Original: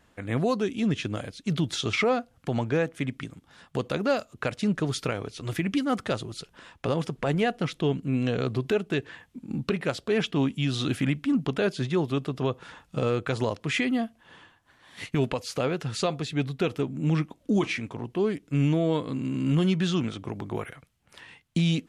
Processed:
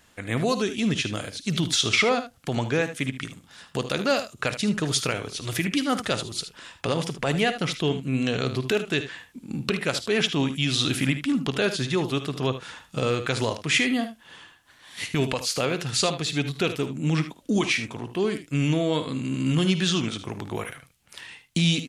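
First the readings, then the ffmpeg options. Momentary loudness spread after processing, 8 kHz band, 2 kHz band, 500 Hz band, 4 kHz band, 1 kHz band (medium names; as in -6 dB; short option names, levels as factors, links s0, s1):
11 LU, +11.0 dB, +6.0 dB, +1.0 dB, +8.5 dB, +2.5 dB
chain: -af "highshelf=f=2200:g=11.5,aecho=1:1:53|76:0.178|0.251"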